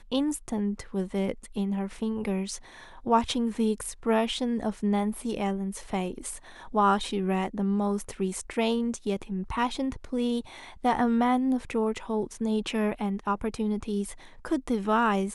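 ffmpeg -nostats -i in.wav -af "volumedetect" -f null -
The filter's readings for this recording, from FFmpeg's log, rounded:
mean_volume: -28.3 dB
max_volume: -10.5 dB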